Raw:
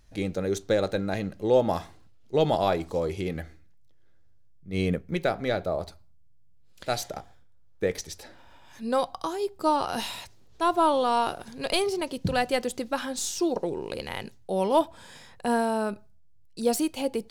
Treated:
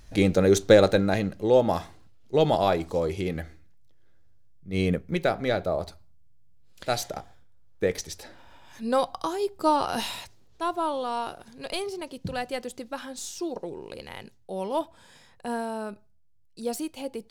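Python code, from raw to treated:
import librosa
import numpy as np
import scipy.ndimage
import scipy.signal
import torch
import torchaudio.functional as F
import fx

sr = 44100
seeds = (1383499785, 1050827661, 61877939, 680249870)

y = fx.gain(x, sr, db=fx.line((0.75, 8.5), (1.48, 1.5), (10.14, 1.5), (10.81, -6.0)))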